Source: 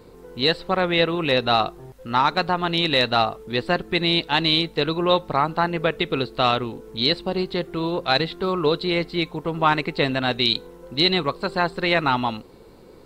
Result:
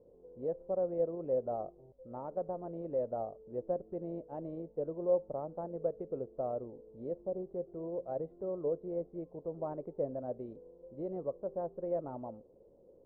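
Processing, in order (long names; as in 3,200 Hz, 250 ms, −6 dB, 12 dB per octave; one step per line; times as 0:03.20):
transistor ladder low-pass 620 Hz, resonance 70%
level −8.5 dB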